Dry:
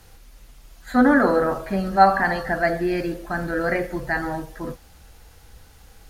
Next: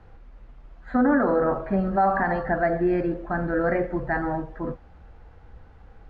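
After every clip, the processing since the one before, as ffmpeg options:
-af "lowpass=1.4k,alimiter=limit=-13.5dB:level=0:latency=1:release=88,volume=1dB"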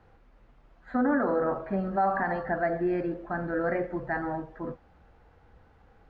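-af "lowshelf=f=82:g=-10.5,volume=-4.5dB"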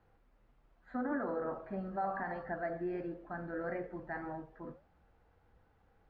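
-af "flanger=delay=5.8:depth=5.4:regen=-78:speed=1.6:shape=sinusoidal,volume=-6dB"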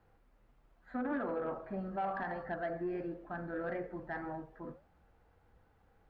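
-af "asoftclip=type=tanh:threshold=-28dB,volume=1dB"

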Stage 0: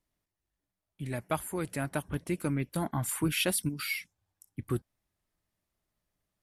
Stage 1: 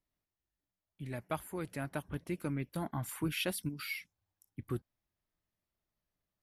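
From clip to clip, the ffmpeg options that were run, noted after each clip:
-af "equalizer=f=8.5k:w=1.5:g=-7.5,volume=-5.5dB"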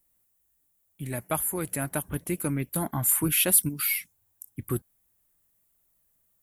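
-af "aexciter=amount=3.8:drive=8.2:freq=7.1k,volume=7.5dB"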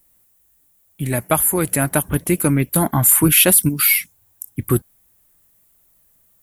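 -af "alimiter=level_in=13dB:limit=-1dB:release=50:level=0:latency=1,volume=-1dB"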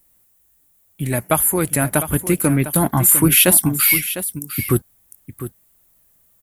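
-af "aecho=1:1:703:0.251"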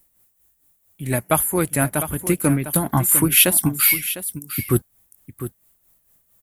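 -af "tremolo=f=4.4:d=0.6"

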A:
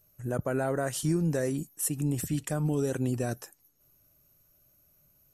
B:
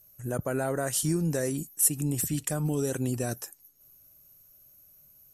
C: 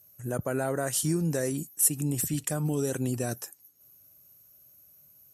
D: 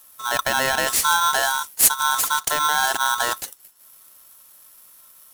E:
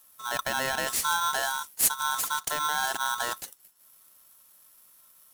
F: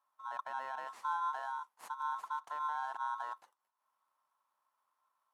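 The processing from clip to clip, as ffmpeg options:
-af "aemphasis=mode=production:type=cd"
-af "highpass=68"
-af "aeval=exprs='val(0)*sgn(sin(2*PI*1200*n/s))':c=same,volume=8dB"
-af "equalizer=f=180:w=1.5:g=3,volume=-8dB"
-af "bandpass=f=980:t=q:w=4.3:csg=0,volume=-3.5dB"

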